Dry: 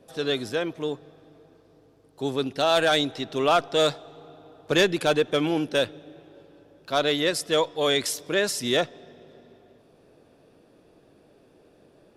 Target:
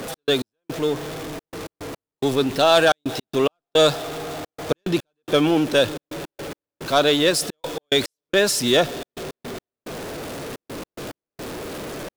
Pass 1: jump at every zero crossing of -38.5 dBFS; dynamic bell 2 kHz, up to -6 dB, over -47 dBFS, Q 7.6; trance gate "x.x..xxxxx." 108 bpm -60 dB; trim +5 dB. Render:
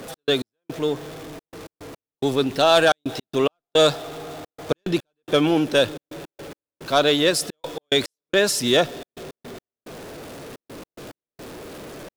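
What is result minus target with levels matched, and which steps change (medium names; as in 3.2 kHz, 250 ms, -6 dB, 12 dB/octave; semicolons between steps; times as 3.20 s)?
jump at every zero crossing: distortion -6 dB
change: jump at every zero crossing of -32 dBFS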